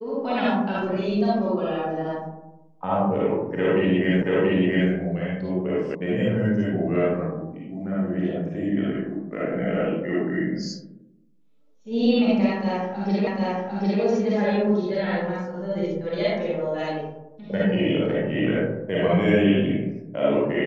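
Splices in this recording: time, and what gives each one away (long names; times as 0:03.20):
0:04.22: the same again, the last 0.68 s
0:05.95: cut off before it has died away
0:13.27: the same again, the last 0.75 s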